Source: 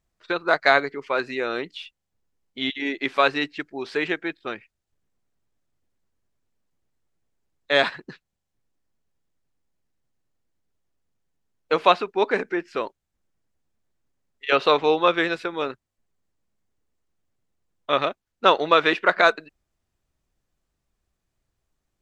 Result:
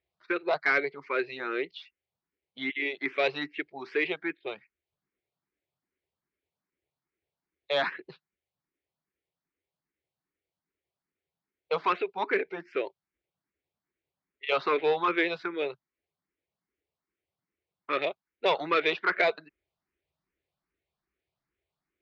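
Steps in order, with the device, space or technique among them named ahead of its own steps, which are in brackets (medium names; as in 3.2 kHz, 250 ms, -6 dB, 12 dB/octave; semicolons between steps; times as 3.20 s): barber-pole phaser into a guitar amplifier (barber-pole phaser +2.5 Hz; saturation -15.5 dBFS, distortion -13 dB; cabinet simulation 94–4500 Hz, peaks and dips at 110 Hz -9 dB, 230 Hz -7 dB, 380 Hz +5 dB, 2.2 kHz +7 dB); trim -3 dB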